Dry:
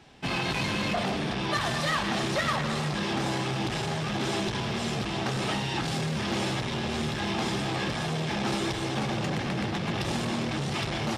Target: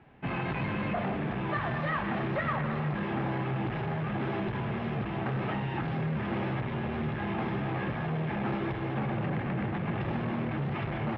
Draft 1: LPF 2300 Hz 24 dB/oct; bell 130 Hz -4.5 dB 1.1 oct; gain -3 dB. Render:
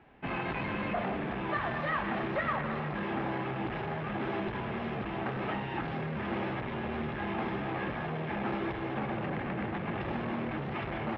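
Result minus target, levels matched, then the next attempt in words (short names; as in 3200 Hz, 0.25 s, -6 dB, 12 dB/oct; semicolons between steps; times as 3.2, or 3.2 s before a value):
125 Hz band -4.5 dB
LPF 2300 Hz 24 dB/oct; bell 130 Hz +3.5 dB 1.1 oct; gain -3 dB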